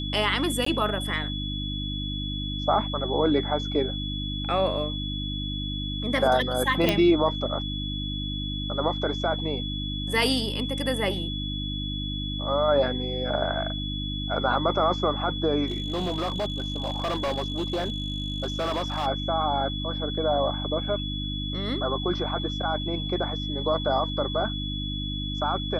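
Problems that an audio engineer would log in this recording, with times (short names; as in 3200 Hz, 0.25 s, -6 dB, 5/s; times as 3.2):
hum 50 Hz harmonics 6 -32 dBFS
tone 3400 Hz -33 dBFS
0.65–0.66 gap 14 ms
6.89 pop -8 dBFS
15.66–19.07 clipped -23.5 dBFS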